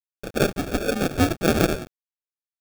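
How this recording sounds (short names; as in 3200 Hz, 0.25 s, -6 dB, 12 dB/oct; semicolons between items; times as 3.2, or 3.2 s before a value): tremolo saw up 1.2 Hz, depth 50%; a quantiser's noise floor 6-bit, dither none; phasing stages 12, 1.3 Hz, lowest notch 420–1500 Hz; aliases and images of a low sample rate 1000 Hz, jitter 0%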